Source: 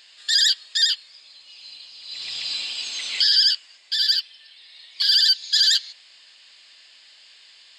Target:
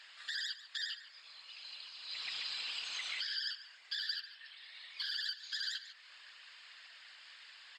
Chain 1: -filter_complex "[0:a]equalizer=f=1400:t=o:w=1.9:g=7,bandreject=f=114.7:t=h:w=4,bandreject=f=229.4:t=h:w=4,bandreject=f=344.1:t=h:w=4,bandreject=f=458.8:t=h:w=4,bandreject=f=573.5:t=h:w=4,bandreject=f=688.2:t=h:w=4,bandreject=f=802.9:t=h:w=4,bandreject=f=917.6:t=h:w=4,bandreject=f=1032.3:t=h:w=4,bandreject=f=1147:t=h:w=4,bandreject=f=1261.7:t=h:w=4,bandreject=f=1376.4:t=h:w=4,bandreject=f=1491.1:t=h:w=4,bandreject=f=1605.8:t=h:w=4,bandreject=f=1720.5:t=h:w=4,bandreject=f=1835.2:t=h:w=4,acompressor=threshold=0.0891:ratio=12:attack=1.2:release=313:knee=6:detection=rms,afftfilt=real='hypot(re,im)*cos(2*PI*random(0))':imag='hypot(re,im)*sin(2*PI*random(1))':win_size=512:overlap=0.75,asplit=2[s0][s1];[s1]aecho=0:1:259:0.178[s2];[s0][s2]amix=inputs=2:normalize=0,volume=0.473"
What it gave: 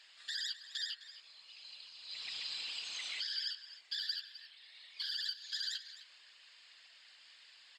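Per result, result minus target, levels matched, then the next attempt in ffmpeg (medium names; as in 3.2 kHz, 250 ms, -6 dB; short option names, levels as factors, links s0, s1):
echo 115 ms late; 1 kHz band -6.0 dB
-filter_complex "[0:a]equalizer=f=1400:t=o:w=1.9:g=7,bandreject=f=114.7:t=h:w=4,bandreject=f=229.4:t=h:w=4,bandreject=f=344.1:t=h:w=4,bandreject=f=458.8:t=h:w=4,bandreject=f=573.5:t=h:w=4,bandreject=f=688.2:t=h:w=4,bandreject=f=802.9:t=h:w=4,bandreject=f=917.6:t=h:w=4,bandreject=f=1032.3:t=h:w=4,bandreject=f=1147:t=h:w=4,bandreject=f=1261.7:t=h:w=4,bandreject=f=1376.4:t=h:w=4,bandreject=f=1491.1:t=h:w=4,bandreject=f=1605.8:t=h:w=4,bandreject=f=1720.5:t=h:w=4,bandreject=f=1835.2:t=h:w=4,acompressor=threshold=0.0891:ratio=12:attack=1.2:release=313:knee=6:detection=rms,afftfilt=real='hypot(re,im)*cos(2*PI*random(0))':imag='hypot(re,im)*sin(2*PI*random(1))':win_size=512:overlap=0.75,asplit=2[s0][s1];[s1]aecho=0:1:144:0.178[s2];[s0][s2]amix=inputs=2:normalize=0,volume=0.473"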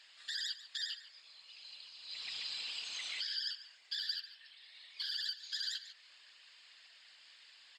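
1 kHz band -6.0 dB
-filter_complex "[0:a]equalizer=f=1400:t=o:w=1.9:g=16.5,bandreject=f=114.7:t=h:w=4,bandreject=f=229.4:t=h:w=4,bandreject=f=344.1:t=h:w=4,bandreject=f=458.8:t=h:w=4,bandreject=f=573.5:t=h:w=4,bandreject=f=688.2:t=h:w=4,bandreject=f=802.9:t=h:w=4,bandreject=f=917.6:t=h:w=4,bandreject=f=1032.3:t=h:w=4,bandreject=f=1147:t=h:w=4,bandreject=f=1261.7:t=h:w=4,bandreject=f=1376.4:t=h:w=4,bandreject=f=1491.1:t=h:w=4,bandreject=f=1605.8:t=h:w=4,bandreject=f=1720.5:t=h:w=4,bandreject=f=1835.2:t=h:w=4,acompressor=threshold=0.0891:ratio=12:attack=1.2:release=313:knee=6:detection=rms,afftfilt=real='hypot(re,im)*cos(2*PI*random(0))':imag='hypot(re,im)*sin(2*PI*random(1))':win_size=512:overlap=0.75,asplit=2[s0][s1];[s1]aecho=0:1:144:0.178[s2];[s0][s2]amix=inputs=2:normalize=0,volume=0.473"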